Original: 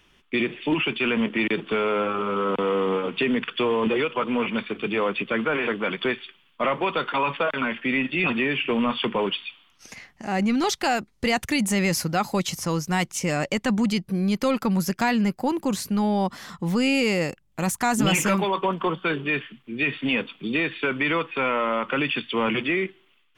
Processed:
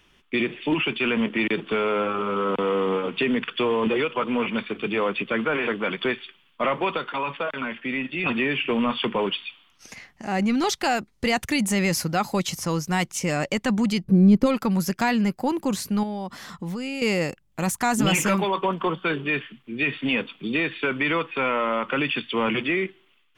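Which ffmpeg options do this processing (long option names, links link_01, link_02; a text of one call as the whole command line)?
ffmpeg -i in.wav -filter_complex "[0:a]asplit=3[link_01][link_02][link_03];[link_01]afade=type=out:start_time=14.03:duration=0.02[link_04];[link_02]tiltshelf=frequency=770:gain=10,afade=type=in:start_time=14.03:duration=0.02,afade=type=out:start_time=14.45:duration=0.02[link_05];[link_03]afade=type=in:start_time=14.45:duration=0.02[link_06];[link_04][link_05][link_06]amix=inputs=3:normalize=0,asettb=1/sr,asplit=3[link_07][link_08][link_09];[link_07]atrim=end=16.034[link_10];[link_08]atrim=start=16.03:end=17.02,asetpts=PTS-STARTPTS,afade=type=in:duration=0.004:curve=qsin,afade=type=out:start_time=0.986:duration=0.004:curve=qsin,acompressor=threshold=-28dB:ratio=5:attack=3.2:release=140:knee=1:detection=peak[link_11];[link_09]atrim=start=17.016[link_12];[link_10][link_11]acrossfade=duration=0.004:curve1=hsin:curve2=qsin[link_13];[link_13][link_12]acrossfade=duration=0.004:curve1=qsin:curve2=hsin,asplit=3[link_14][link_15][link_16];[link_14]atrim=end=6.972[link_17];[link_15]atrim=start=6.968:end=8.262,asetpts=PTS-STARTPTS,volume=-4dB[link_18];[link_16]atrim=start=8.258[link_19];[link_17][link_18]acrossfade=duration=0.004:curve1=hsin:curve2=hsin[link_20];[link_20][link_19]acrossfade=duration=0.004:curve1=hsin:curve2=hsin" out.wav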